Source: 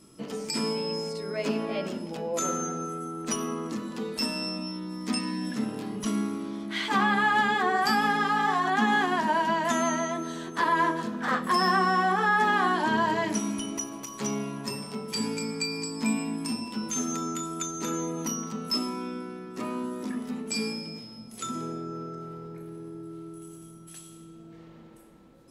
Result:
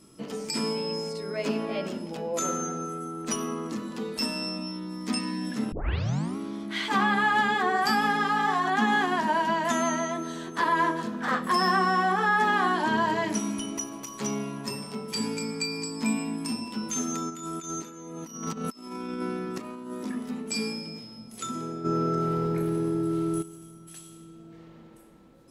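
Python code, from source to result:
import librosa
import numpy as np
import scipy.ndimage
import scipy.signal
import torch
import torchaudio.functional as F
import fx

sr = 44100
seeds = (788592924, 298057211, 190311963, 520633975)

y = fx.over_compress(x, sr, threshold_db=-37.0, ratio=-0.5, at=(17.29, 19.91), fade=0.02)
y = fx.env_flatten(y, sr, amount_pct=70, at=(21.84, 23.41), fade=0.02)
y = fx.edit(y, sr, fx.tape_start(start_s=5.72, length_s=0.65), tone=tone)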